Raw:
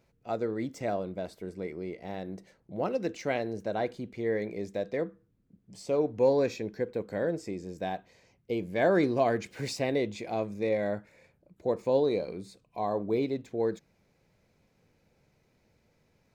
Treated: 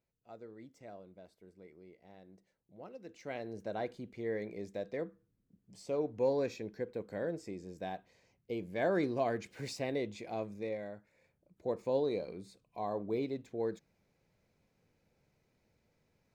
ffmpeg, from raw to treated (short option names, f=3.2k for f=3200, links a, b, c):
-af "volume=2dB,afade=t=in:st=3.04:d=0.6:silence=0.251189,afade=t=out:st=10.48:d=0.46:silence=0.375837,afade=t=in:st=10.94:d=0.75:silence=0.354813"